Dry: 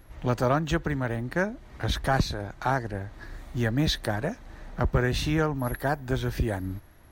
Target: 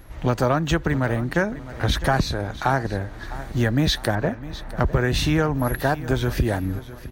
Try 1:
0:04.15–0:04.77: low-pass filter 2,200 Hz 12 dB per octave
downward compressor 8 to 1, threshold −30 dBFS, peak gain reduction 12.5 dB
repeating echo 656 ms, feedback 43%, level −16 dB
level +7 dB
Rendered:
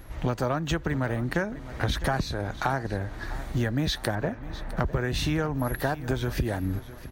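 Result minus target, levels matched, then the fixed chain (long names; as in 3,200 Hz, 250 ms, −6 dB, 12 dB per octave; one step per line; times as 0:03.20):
downward compressor: peak gain reduction +7 dB
0:04.15–0:04.77: low-pass filter 2,200 Hz 12 dB per octave
downward compressor 8 to 1, threshold −22 dBFS, peak gain reduction 5.5 dB
repeating echo 656 ms, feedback 43%, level −16 dB
level +7 dB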